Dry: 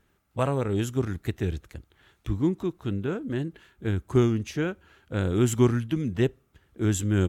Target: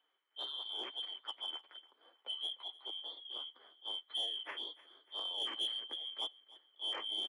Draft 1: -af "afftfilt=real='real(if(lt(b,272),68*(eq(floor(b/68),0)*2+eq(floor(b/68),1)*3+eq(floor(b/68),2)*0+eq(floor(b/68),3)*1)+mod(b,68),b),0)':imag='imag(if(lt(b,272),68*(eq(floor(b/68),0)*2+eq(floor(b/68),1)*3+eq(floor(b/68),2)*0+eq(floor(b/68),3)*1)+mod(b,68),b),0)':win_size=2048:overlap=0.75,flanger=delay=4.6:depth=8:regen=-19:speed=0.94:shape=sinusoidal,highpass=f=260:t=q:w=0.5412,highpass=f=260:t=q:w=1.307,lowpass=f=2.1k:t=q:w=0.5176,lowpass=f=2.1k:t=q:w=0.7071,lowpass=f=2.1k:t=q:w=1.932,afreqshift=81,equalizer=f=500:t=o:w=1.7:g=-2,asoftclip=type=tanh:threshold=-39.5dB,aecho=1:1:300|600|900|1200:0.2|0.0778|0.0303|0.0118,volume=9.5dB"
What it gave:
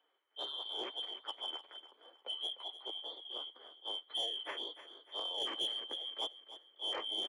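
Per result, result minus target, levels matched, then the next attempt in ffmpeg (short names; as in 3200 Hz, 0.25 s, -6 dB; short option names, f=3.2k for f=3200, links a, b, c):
500 Hz band +6.0 dB; echo-to-direct +6.5 dB
-af "afftfilt=real='real(if(lt(b,272),68*(eq(floor(b/68),0)*2+eq(floor(b/68),1)*3+eq(floor(b/68),2)*0+eq(floor(b/68),3)*1)+mod(b,68),b),0)':imag='imag(if(lt(b,272),68*(eq(floor(b/68),0)*2+eq(floor(b/68),1)*3+eq(floor(b/68),2)*0+eq(floor(b/68),3)*1)+mod(b,68),b),0)':win_size=2048:overlap=0.75,flanger=delay=4.6:depth=8:regen=-19:speed=0.94:shape=sinusoidal,highpass=f=260:t=q:w=0.5412,highpass=f=260:t=q:w=1.307,lowpass=f=2.1k:t=q:w=0.5176,lowpass=f=2.1k:t=q:w=0.7071,lowpass=f=2.1k:t=q:w=1.932,afreqshift=81,equalizer=f=500:t=o:w=1.7:g=-9.5,asoftclip=type=tanh:threshold=-39.5dB,aecho=1:1:300|600|900|1200:0.2|0.0778|0.0303|0.0118,volume=9.5dB"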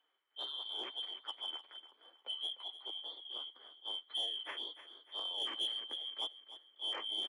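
echo-to-direct +6.5 dB
-af "afftfilt=real='real(if(lt(b,272),68*(eq(floor(b/68),0)*2+eq(floor(b/68),1)*3+eq(floor(b/68),2)*0+eq(floor(b/68),3)*1)+mod(b,68),b),0)':imag='imag(if(lt(b,272),68*(eq(floor(b/68),0)*2+eq(floor(b/68),1)*3+eq(floor(b/68),2)*0+eq(floor(b/68),3)*1)+mod(b,68),b),0)':win_size=2048:overlap=0.75,flanger=delay=4.6:depth=8:regen=-19:speed=0.94:shape=sinusoidal,highpass=f=260:t=q:w=0.5412,highpass=f=260:t=q:w=1.307,lowpass=f=2.1k:t=q:w=0.5176,lowpass=f=2.1k:t=q:w=0.7071,lowpass=f=2.1k:t=q:w=1.932,afreqshift=81,equalizer=f=500:t=o:w=1.7:g=-9.5,asoftclip=type=tanh:threshold=-39.5dB,aecho=1:1:300|600|900:0.0944|0.0368|0.0144,volume=9.5dB"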